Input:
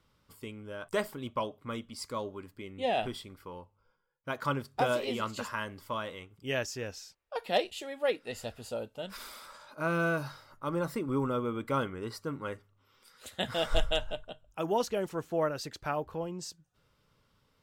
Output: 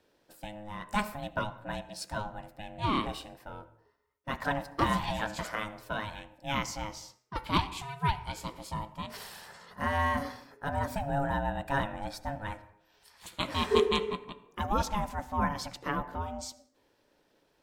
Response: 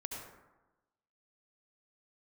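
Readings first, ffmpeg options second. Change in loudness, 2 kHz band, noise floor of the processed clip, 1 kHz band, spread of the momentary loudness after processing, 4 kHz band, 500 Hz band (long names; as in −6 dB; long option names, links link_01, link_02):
+1.0 dB, +1.5 dB, −71 dBFS, +4.0 dB, 15 LU, +1.0 dB, −2.5 dB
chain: -filter_complex "[0:a]aeval=exprs='val(0)*sin(2*PI*420*n/s)':channel_layout=same,bandreject=frequency=125.4:width_type=h:width=4,bandreject=frequency=250.8:width_type=h:width=4,bandreject=frequency=376.2:width_type=h:width=4,bandreject=frequency=501.6:width_type=h:width=4,bandreject=frequency=627:width_type=h:width=4,bandreject=frequency=752.4:width_type=h:width=4,bandreject=frequency=877.8:width_type=h:width=4,bandreject=frequency=1003.2:width_type=h:width=4,bandreject=frequency=1128.6:width_type=h:width=4,bandreject=frequency=1254:width_type=h:width=4,bandreject=frequency=1379.4:width_type=h:width=4,bandreject=frequency=1504.8:width_type=h:width=4,bandreject=frequency=1630.2:width_type=h:width=4,bandreject=frequency=1755.6:width_type=h:width=4,bandreject=frequency=1881:width_type=h:width=4,bandreject=frequency=2006.4:width_type=h:width=4,bandreject=frequency=2131.8:width_type=h:width=4,bandreject=frequency=2257.2:width_type=h:width=4,bandreject=frequency=2382.6:width_type=h:width=4,bandreject=frequency=2508:width_type=h:width=4,bandreject=frequency=2633.4:width_type=h:width=4,bandreject=frequency=2758.8:width_type=h:width=4,asplit=2[link_01][link_02];[1:a]atrim=start_sample=2205,afade=type=out:start_time=0.33:duration=0.01,atrim=end_sample=14994[link_03];[link_02][link_03]afir=irnorm=-1:irlink=0,volume=-13dB[link_04];[link_01][link_04]amix=inputs=2:normalize=0,volume=2.5dB"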